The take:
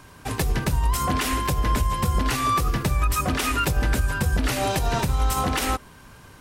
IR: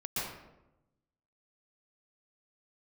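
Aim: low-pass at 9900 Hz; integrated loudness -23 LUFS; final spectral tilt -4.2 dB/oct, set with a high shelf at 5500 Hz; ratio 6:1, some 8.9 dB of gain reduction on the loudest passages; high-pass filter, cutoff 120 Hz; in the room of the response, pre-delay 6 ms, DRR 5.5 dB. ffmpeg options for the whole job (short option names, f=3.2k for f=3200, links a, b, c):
-filter_complex "[0:a]highpass=120,lowpass=9.9k,highshelf=f=5.5k:g=7,acompressor=threshold=-29dB:ratio=6,asplit=2[a][b];[1:a]atrim=start_sample=2205,adelay=6[c];[b][c]afir=irnorm=-1:irlink=0,volume=-10.5dB[d];[a][d]amix=inputs=2:normalize=0,volume=8dB"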